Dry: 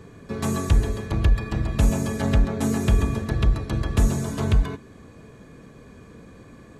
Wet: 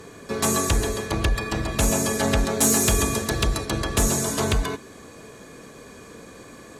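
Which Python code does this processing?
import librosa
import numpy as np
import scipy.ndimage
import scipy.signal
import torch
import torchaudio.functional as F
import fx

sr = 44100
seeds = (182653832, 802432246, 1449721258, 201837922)

y = fx.bass_treble(x, sr, bass_db=-11, treble_db=fx.steps((0.0, 7.0), (2.37, 14.0), (3.64, 8.0)))
y = fx.fold_sine(y, sr, drive_db=4, ceiling_db=-9.0)
y = y * 10.0 ** (-1.5 / 20.0)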